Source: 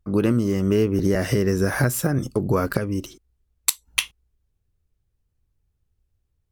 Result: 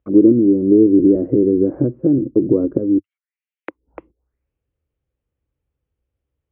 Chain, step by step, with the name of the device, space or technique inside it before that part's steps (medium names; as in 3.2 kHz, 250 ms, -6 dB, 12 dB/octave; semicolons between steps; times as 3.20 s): 2.98–3.70 s: steep high-pass 1.8 kHz; envelope filter bass rig (touch-sensitive low-pass 330–3400 Hz down, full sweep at -25.5 dBFS; cabinet simulation 61–2200 Hz, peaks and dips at 98 Hz -8 dB, 180 Hz -4 dB, 300 Hz +5 dB, 520 Hz +9 dB, 1.7 kHz -3 dB); trim -1 dB